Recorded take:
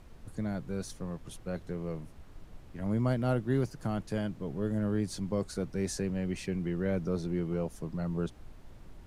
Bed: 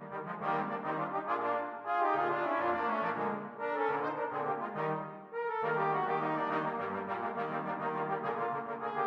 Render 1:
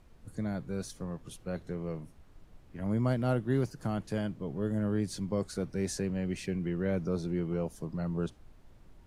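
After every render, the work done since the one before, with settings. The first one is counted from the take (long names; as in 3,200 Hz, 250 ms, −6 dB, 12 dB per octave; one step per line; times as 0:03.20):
noise reduction from a noise print 6 dB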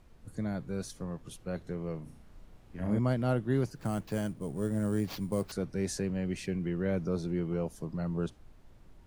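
0:02.03–0:02.99: flutter between parallel walls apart 5.8 metres, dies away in 0.47 s
0:03.75–0:05.52: sample-rate reduction 9,200 Hz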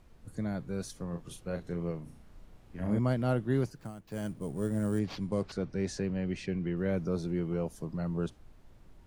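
0:01.09–0:01.91: double-tracking delay 35 ms −7 dB
0:03.62–0:04.34: duck −13.5 dB, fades 0.32 s
0:04.99–0:06.77: low-pass filter 5,500 Hz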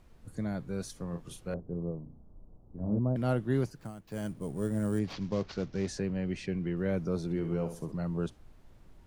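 0:01.54–0:03.16: Bessel low-pass filter 610 Hz, order 8
0:05.13–0:05.88: variable-slope delta modulation 32 kbit/s
0:07.24–0:07.92: flutter between parallel walls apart 11.2 metres, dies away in 0.41 s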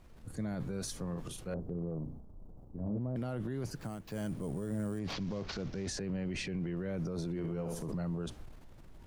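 transient designer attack +1 dB, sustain +8 dB
brickwall limiter −29.5 dBFS, peak gain reduction 11.5 dB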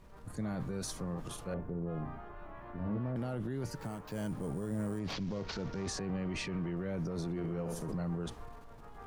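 mix in bed −19 dB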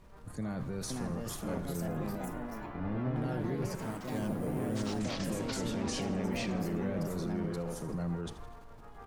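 repeating echo 81 ms, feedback 53%, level −15 dB
delay with pitch and tempo change per echo 581 ms, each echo +3 semitones, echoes 3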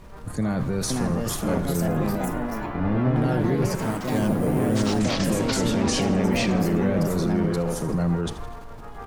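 level +12 dB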